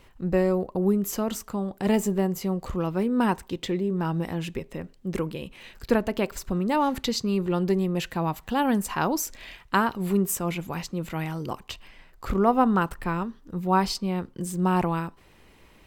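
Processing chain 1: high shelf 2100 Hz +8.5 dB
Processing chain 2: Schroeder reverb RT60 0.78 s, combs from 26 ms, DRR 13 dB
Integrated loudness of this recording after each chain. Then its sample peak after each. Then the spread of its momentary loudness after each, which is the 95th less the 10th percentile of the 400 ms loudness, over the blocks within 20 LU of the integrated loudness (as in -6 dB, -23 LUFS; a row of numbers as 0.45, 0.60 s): -25.0, -26.5 LUFS; -5.0, -7.5 dBFS; 11, 10 LU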